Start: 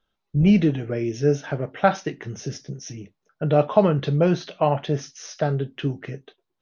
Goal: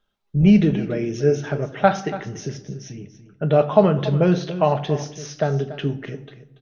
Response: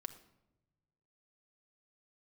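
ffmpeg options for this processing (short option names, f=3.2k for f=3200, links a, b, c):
-filter_complex "[0:a]asettb=1/sr,asplit=3[a][b][c];[a]atrim=end=2.524[d];[b]atrim=start=2.52:end=3.44,asetpts=PTS-STARTPTS,afade=t=in:d=0.004:c=qsin,afade=t=out:st=0.916:d=0.004:c=qsin,highshelf=f=5.1k:g=-9.5[e];[c]atrim=start=3.436[f];[d][e]acrossfade=d=0.004:c1=hsin:c2=qsin[g];[g][f]acrossfade=d=0.004:c1=qsin:c2=hsin,aecho=1:1:285:0.188,asplit=2[h][i];[1:a]atrim=start_sample=2205[j];[i][j]afir=irnorm=-1:irlink=0,volume=9dB[k];[h][k]amix=inputs=2:normalize=0,volume=-7.5dB"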